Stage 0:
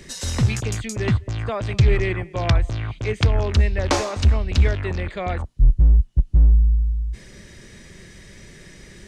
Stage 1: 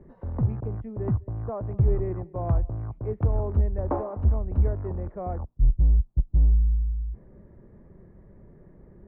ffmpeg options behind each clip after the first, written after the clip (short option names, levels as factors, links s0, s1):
-af "lowpass=f=1000:w=0.5412,lowpass=f=1000:w=1.3066,volume=0.531"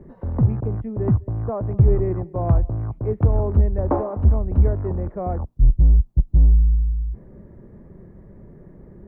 -af "equalizer=f=210:t=o:w=2.2:g=3,volume=1.78"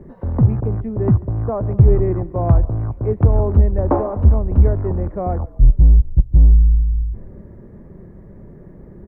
-filter_complex "[0:a]asplit=5[s0][s1][s2][s3][s4];[s1]adelay=140,afreqshift=-38,volume=0.1[s5];[s2]adelay=280,afreqshift=-76,volume=0.0562[s6];[s3]adelay=420,afreqshift=-114,volume=0.0313[s7];[s4]adelay=560,afreqshift=-152,volume=0.0176[s8];[s0][s5][s6][s7][s8]amix=inputs=5:normalize=0,volume=1.58"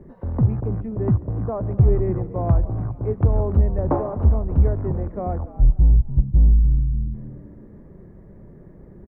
-filter_complex "[0:a]asplit=4[s0][s1][s2][s3];[s1]adelay=291,afreqshift=79,volume=0.141[s4];[s2]adelay=582,afreqshift=158,volume=0.0452[s5];[s3]adelay=873,afreqshift=237,volume=0.0145[s6];[s0][s4][s5][s6]amix=inputs=4:normalize=0,volume=0.596"